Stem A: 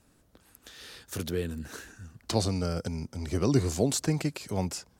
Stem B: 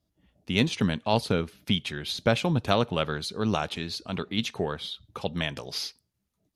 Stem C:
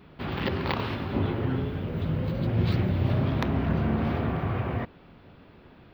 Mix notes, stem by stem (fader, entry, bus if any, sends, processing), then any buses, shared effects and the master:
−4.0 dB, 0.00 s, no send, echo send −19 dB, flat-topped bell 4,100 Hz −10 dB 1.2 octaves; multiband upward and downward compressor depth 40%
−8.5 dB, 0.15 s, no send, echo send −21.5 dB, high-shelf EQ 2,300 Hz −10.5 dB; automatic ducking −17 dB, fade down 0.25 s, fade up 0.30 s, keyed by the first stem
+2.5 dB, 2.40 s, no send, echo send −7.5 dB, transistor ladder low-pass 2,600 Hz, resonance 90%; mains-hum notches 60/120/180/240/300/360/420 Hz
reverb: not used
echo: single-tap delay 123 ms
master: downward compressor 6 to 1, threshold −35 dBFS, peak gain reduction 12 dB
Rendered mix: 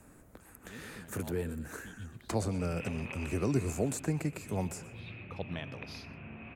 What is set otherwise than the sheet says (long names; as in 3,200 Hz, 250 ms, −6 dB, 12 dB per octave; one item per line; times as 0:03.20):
stem C +2.5 dB → −9.5 dB
master: missing downward compressor 6 to 1, threshold −35 dBFS, peak gain reduction 12 dB